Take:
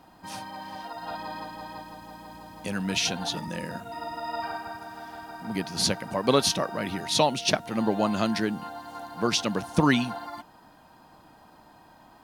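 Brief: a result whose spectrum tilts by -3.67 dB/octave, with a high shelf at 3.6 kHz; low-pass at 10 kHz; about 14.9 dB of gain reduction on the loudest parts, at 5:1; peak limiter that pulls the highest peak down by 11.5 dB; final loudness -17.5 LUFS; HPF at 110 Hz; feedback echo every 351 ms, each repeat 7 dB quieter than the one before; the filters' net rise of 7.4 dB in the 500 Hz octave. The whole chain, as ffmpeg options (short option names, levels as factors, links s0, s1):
-af "highpass=110,lowpass=10000,equalizer=f=500:t=o:g=9,highshelf=f=3600:g=6,acompressor=threshold=0.0398:ratio=5,alimiter=level_in=1.19:limit=0.0631:level=0:latency=1,volume=0.841,aecho=1:1:351|702|1053|1404|1755:0.447|0.201|0.0905|0.0407|0.0183,volume=7.5"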